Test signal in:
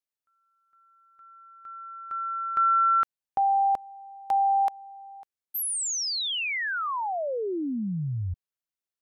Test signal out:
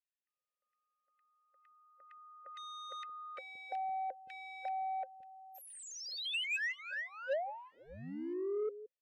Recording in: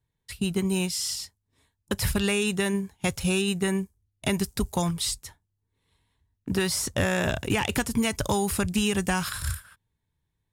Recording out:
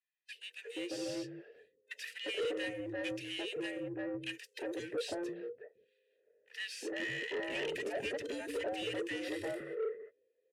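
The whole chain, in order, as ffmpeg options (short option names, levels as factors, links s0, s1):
-filter_complex "[0:a]afftfilt=real='real(if(between(b,1,1008),(2*floor((b-1)/24)+1)*24-b,b),0)':imag='imag(if(between(b,1,1008),(2*floor((b-1)/24)+1)*24-b,b),0)*if(between(b,1,1008),-1,1)':win_size=2048:overlap=0.75,asplit=2[s0][s1];[s1]aeval=exprs='0.0422*(abs(mod(val(0)/0.0422+3,4)-2)-1)':c=same,volume=0.596[s2];[s0][s2]amix=inputs=2:normalize=0,asplit=3[s3][s4][s5];[s3]bandpass=f=530:t=q:w=8,volume=1[s6];[s4]bandpass=f=1840:t=q:w=8,volume=0.501[s7];[s5]bandpass=f=2480:t=q:w=8,volume=0.355[s8];[s6][s7][s8]amix=inputs=3:normalize=0,adynamicequalizer=threshold=0.00316:dfrequency=1800:dqfactor=2.6:tfrequency=1800:tqfactor=2.6:attack=5:release=100:ratio=0.375:range=2:mode=cutabove:tftype=bell,acrossover=split=270|1600[s9][s10][s11];[s10]adelay=350[s12];[s9]adelay=520[s13];[s13][s12][s11]amix=inputs=3:normalize=0,acrossover=split=7800[s14][s15];[s14]asoftclip=type=tanh:threshold=0.0168[s16];[s16][s15]amix=inputs=2:normalize=0,volume=1.78"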